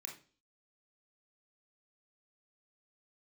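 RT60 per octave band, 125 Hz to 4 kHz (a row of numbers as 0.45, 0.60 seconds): 0.45, 0.50, 0.45, 0.35, 0.35, 0.45 seconds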